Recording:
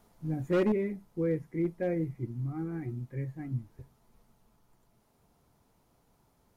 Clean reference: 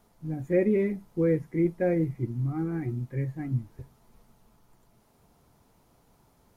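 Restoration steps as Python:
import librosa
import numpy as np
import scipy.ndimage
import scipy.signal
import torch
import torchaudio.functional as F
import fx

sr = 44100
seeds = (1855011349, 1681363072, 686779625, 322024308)

y = fx.fix_declip(x, sr, threshold_db=-22.0)
y = fx.gain(y, sr, db=fx.steps((0.0, 0.0), (0.72, 5.5)))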